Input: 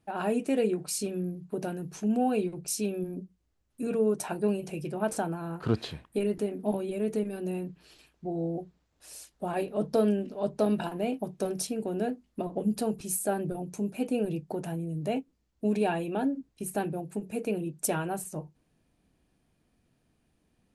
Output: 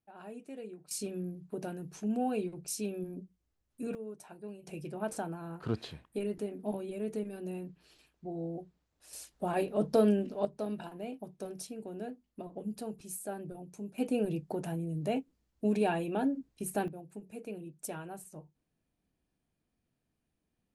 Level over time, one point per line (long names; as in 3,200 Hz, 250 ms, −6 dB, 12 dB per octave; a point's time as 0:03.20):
−18 dB
from 0:00.91 −5.5 dB
from 0:03.95 −17.5 dB
from 0:04.67 −6.5 dB
from 0:09.13 −0.5 dB
from 0:10.45 −10.5 dB
from 0:13.98 −2 dB
from 0:16.88 −11.5 dB